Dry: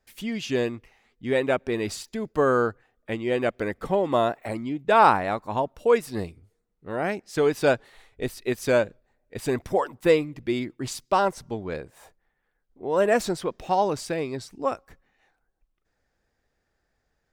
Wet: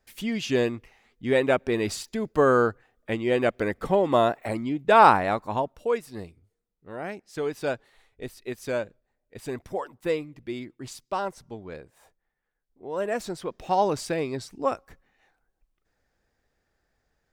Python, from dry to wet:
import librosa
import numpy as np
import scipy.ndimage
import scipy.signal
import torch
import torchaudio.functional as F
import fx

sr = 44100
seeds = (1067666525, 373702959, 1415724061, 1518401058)

y = fx.gain(x, sr, db=fx.line((5.43, 1.5), (6.02, -7.5), (13.21, -7.5), (13.83, 0.5)))